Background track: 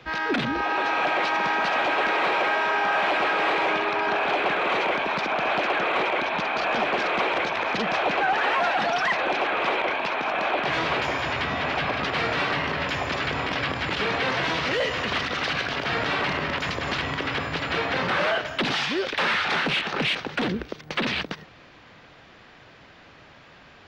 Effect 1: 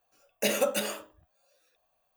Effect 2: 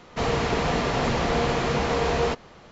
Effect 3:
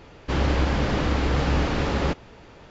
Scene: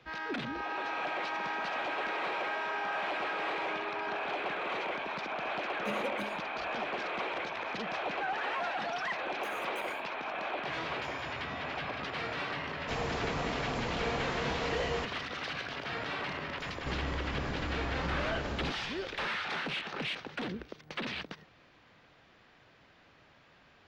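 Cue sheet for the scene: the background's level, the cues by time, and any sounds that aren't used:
background track -11.5 dB
5.43 s: add 1 -13 dB + RIAA curve playback
9.01 s: add 1 -14.5 dB + compression 2.5:1, threshold -36 dBFS
12.71 s: add 2 -11.5 dB
16.58 s: add 3 -2 dB + compression 3:1, threshold -35 dBFS

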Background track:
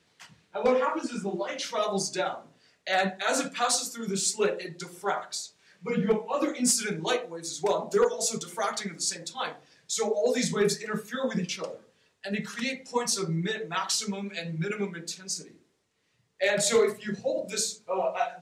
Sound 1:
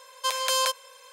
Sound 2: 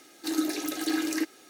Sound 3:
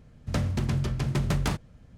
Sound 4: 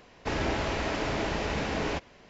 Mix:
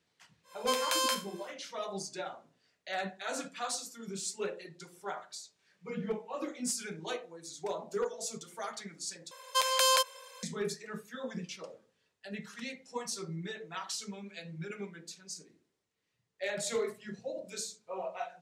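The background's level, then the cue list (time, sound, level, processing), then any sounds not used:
background track -10.5 dB
0.43 s: add 1 -6 dB, fades 0.10 s + spectral sustain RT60 0.32 s
9.31 s: replace with 1 -1.5 dB + bass shelf 350 Hz +4 dB
not used: 2, 3, 4

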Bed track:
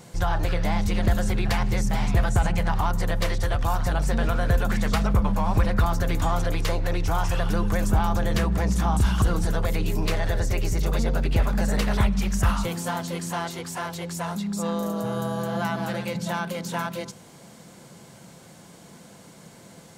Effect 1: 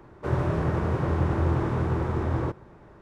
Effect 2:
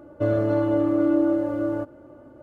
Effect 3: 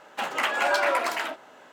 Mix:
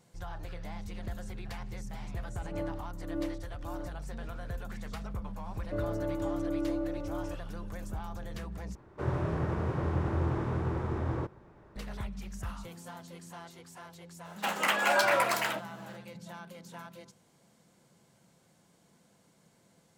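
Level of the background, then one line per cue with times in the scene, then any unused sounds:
bed track -17.5 dB
2.04 s: add 2 -13.5 dB + logarithmic tremolo 1.7 Hz, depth 20 dB
5.51 s: add 2 -12.5 dB
8.75 s: replace with 1 -6 dB
14.25 s: add 3 -2.5 dB + treble shelf 8.8 kHz +10.5 dB

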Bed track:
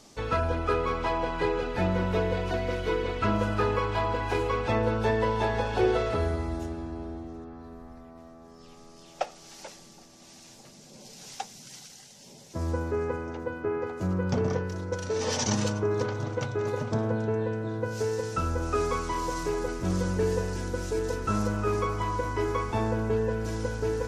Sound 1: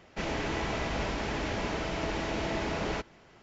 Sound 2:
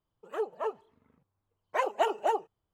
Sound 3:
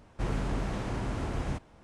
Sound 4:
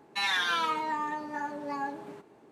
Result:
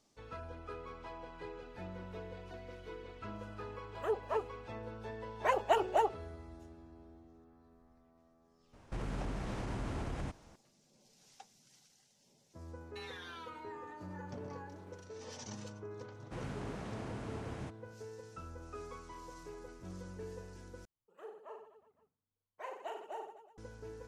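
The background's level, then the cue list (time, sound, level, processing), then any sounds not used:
bed track -19.5 dB
3.70 s: add 2 -2 dB
8.73 s: add 3 -3 dB + peak limiter -27.5 dBFS
12.80 s: add 4 -12 dB + compression 4:1, threshold -35 dBFS
16.12 s: add 3 -9 dB + high-pass 82 Hz
20.85 s: replace with 2 -18 dB + reverse bouncing-ball echo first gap 40 ms, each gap 1.3×, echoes 6
not used: 1

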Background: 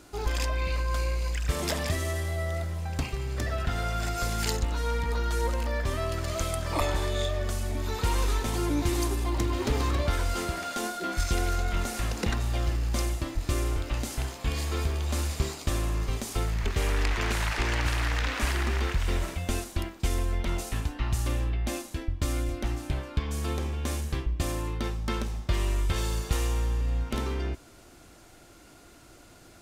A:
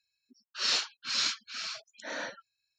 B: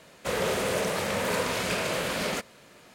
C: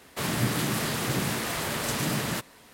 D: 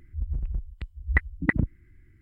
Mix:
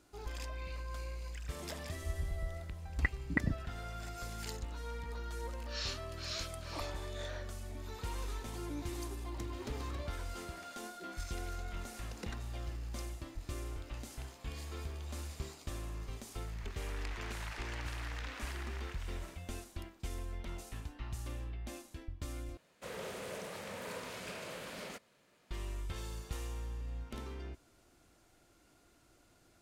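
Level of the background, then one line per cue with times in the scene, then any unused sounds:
background -14 dB
1.88 s: add D -9 dB
5.13 s: add A -12.5 dB
22.57 s: replace with B -16 dB
not used: C

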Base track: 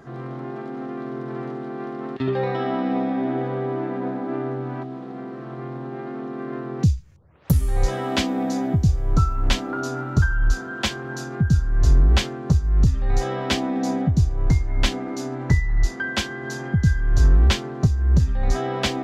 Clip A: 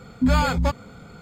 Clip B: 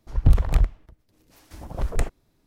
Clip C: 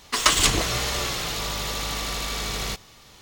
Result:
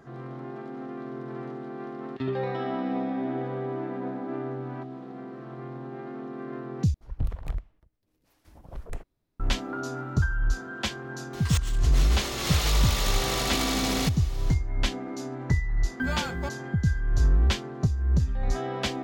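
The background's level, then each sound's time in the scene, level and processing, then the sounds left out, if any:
base track -6 dB
6.94 s: replace with B -12.5 dB + peaking EQ 7.1 kHz -3.5 dB 1.4 oct
11.33 s: add C -0.5 dB + compressor with a negative ratio -30 dBFS, ratio -0.5
15.78 s: add A -10.5 dB + companding laws mixed up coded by A

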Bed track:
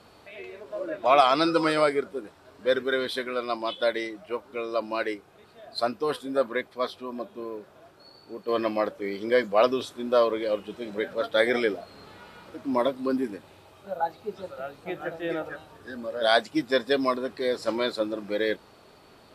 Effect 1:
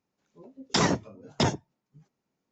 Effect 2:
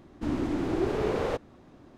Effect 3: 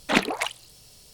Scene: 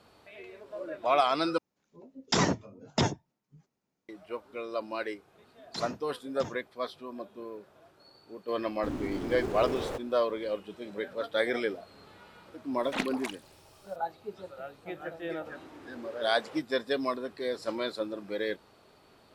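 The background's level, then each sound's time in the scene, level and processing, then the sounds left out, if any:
bed track -6 dB
1.58 s: replace with 1 -2 dB
5.00 s: add 1 -17 dB
8.61 s: add 2 -6 dB + dead-time distortion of 0.081 ms
12.83 s: add 3 -11.5 dB
15.23 s: add 2 -15 dB + frequency weighting A

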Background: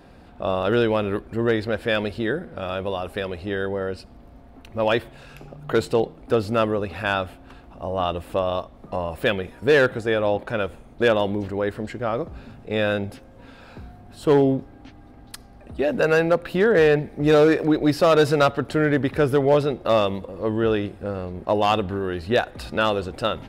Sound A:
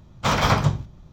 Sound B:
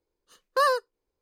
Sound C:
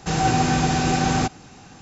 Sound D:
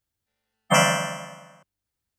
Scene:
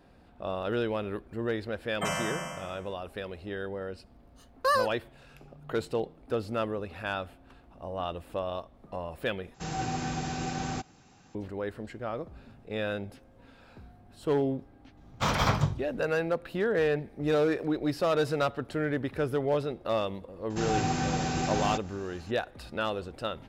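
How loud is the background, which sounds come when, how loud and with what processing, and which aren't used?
background -10 dB
1.31 s: add D -3 dB + compression 2.5:1, threshold -29 dBFS
4.08 s: add B -3 dB
9.54 s: replace with C -13 dB
14.97 s: add A -6.5 dB
20.50 s: add C -9.5 dB + upward compressor, threshold -34 dBFS

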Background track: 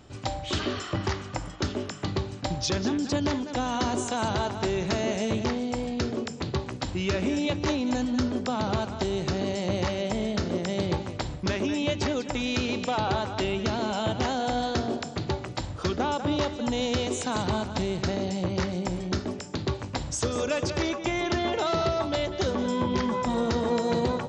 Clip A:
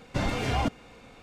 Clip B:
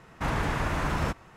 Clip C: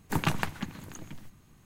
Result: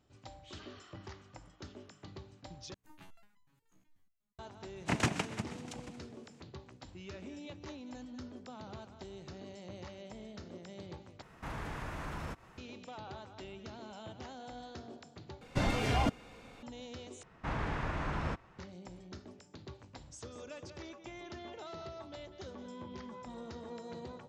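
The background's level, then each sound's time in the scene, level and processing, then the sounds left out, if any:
background track -20 dB
2.74 s: replace with C -18 dB + resonator arpeggio 8.2 Hz 63–1000 Hz
4.76 s: add C -2.5 dB + noise-vocoded speech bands 4
11.22 s: replace with B -5.5 dB + compression 1.5:1, threshold -45 dBFS
15.41 s: replace with A -3 dB
17.23 s: replace with B -7.5 dB + distance through air 100 m

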